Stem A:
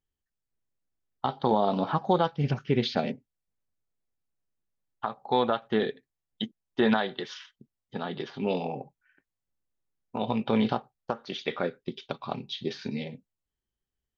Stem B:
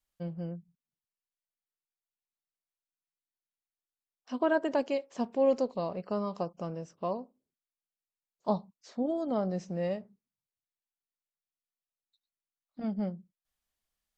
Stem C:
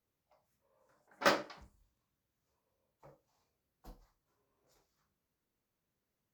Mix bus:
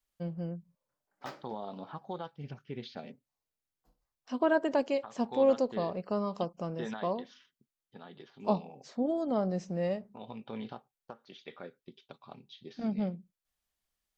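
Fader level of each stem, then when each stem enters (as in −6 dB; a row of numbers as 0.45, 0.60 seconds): −16.0, +0.5, −17.0 decibels; 0.00, 0.00, 0.00 seconds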